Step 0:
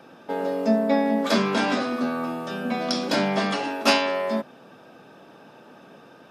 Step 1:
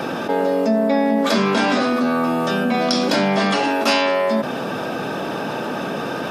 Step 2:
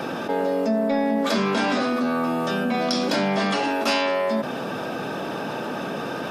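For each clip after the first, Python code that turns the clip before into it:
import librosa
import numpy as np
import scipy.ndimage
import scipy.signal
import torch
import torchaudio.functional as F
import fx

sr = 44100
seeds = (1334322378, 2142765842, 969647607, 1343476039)

y1 = fx.env_flatten(x, sr, amount_pct=70)
y2 = 10.0 ** (-5.5 / 20.0) * np.tanh(y1 / 10.0 ** (-5.5 / 20.0))
y2 = y2 * 10.0 ** (-4.0 / 20.0)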